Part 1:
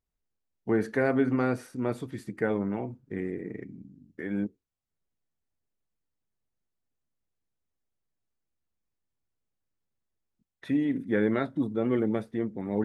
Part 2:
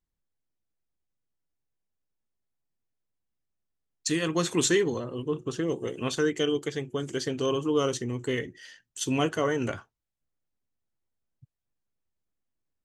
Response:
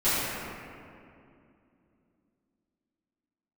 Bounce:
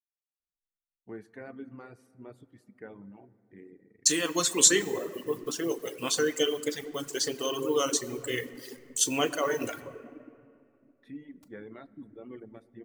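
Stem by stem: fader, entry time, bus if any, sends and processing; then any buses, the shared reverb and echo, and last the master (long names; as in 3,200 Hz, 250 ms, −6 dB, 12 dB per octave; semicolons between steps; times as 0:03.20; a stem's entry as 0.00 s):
−17.5 dB, 0.40 s, send −23 dB, no processing
−1.0 dB, 0.00 s, send −17.5 dB, hold until the input has moved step −46.5 dBFS; bass and treble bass −11 dB, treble +10 dB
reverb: on, RT60 2.5 s, pre-delay 3 ms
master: reverb reduction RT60 1.8 s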